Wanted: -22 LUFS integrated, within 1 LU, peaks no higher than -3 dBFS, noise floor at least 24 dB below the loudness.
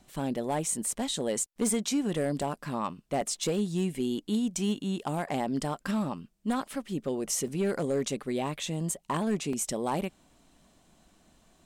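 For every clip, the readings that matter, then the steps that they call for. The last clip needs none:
clipped 0.8%; flat tops at -21.5 dBFS; dropouts 5; longest dropout 3.0 ms; loudness -31.0 LUFS; peak -21.5 dBFS; loudness target -22.0 LUFS
-> clip repair -21.5 dBFS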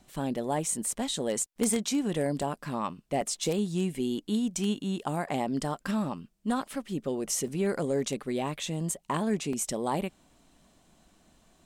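clipped 0.0%; dropouts 5; longest dropout 3.0 ms
-> interpolate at 2.42/3.21/7.48/8.94/9.53, 3 ms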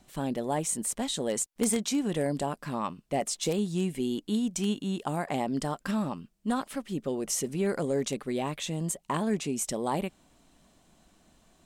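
dropouts 0; loudness -31.0 LUFS; peak -12.5 dBFS; loudness target -22.0 LUFS
-> gain +9 dB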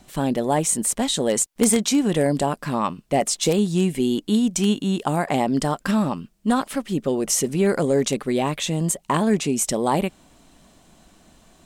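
loudness -22.0 LUFS; peak -3.5 dBFS; noise floor -56 dBFS

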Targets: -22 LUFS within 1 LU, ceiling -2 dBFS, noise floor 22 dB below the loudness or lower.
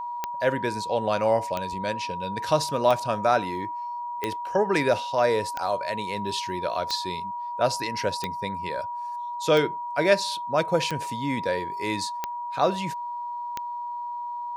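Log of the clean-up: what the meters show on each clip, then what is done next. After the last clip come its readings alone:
clicks 11; steady tone 960 Hz; tone level -30 dBFS; loudness -26.5 LUFS; peak -7.5 dBFS; loudness target -22.0 LUFS
-> de-click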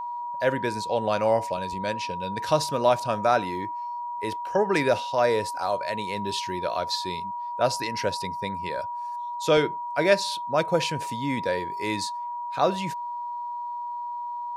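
clicks 0; steady tone 960 Hz; tone level -30 dBFS
-> notch 960 Hz, Q 30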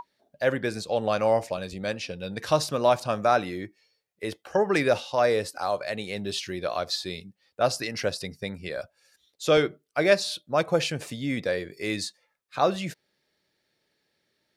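steady tone none; loudness -27.0 LUFS; peak -7.5 dBFS; loudness target -22.0 LUFS
-> gain +5 dB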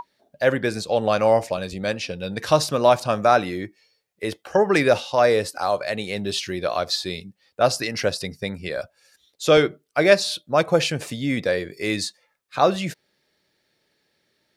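loudness -22.0 LUFS; peak -2.5 dBFS; noise floor -71 dBFS

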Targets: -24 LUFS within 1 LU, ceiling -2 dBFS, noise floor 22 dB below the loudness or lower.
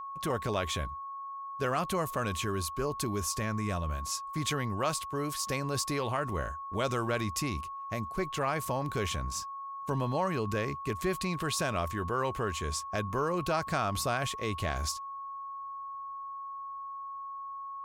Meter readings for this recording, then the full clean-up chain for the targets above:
steady tone 1100 Hz; tone level -38 dBFS; loudness -33.5 LUFS; peak -18.0 dBFS; loudness target -24.0 LUFS
-> notch 1100 Hz, Q 30; gain +9.5 dB

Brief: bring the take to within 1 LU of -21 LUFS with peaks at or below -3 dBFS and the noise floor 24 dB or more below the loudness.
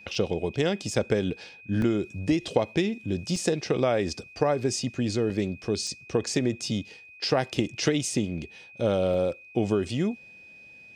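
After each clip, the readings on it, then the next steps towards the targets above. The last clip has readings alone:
dropouts 7; longest dropout 2.3 ms; steady tone 2500 Hz; tone level -47 dBFS; loudness -27.5 LUFS; peak -7.0 dBFS; loudness target -21.0 LUFS
-> interpolate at 0.15/1.82/3.36/5.3/5.87/7.31/9.14, 2.3 ms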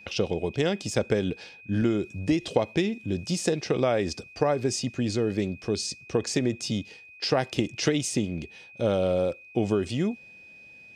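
dropouts 0; steady tone 2500 Hz; tone level -47 dBFS
-> notch 2500 Hz, Q 30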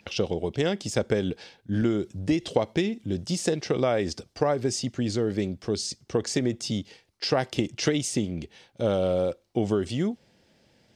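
steady tone none; loudness -27.5 LUFS; peak -7.5 dBFS; loudness target -21.0 LUFS
-> gain +6.5 dB; limiter -3 dBFS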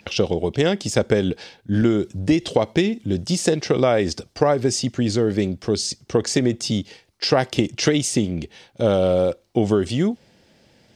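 loudness -21.0 LUFS; peak -3.0 dBFS; noise floor -57 dBFS

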